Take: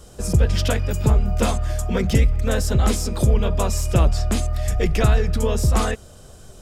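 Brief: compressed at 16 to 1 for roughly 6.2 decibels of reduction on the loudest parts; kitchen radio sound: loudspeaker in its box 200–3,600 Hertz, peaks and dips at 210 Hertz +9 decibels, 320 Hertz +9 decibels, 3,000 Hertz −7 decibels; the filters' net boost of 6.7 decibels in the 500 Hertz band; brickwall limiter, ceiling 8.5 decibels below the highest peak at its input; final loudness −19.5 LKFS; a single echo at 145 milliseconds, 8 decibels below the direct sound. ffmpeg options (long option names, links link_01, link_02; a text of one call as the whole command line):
ffmpeg -i in.wav -af "equalizer=frequency=500:width_type=o:gain=6.5,acompressor=threshold=-16dB:ratio=16,alimiter=limit=-15.5dB:level=0:latency=1,highpass=200,equalizer=frequency=210:width_type=q:width=4:gain=9,equalizer=frequency=320:width_type=q:width=4:gain=9,equalizer=frequency=3000:width_type=q:width=4:gain=-7,lowpass=frequency=3600:width=0.5412,lowpass=frequency=3600:width=1.3066,aecho=1:1:145:0.398,volume=7dB" out.wav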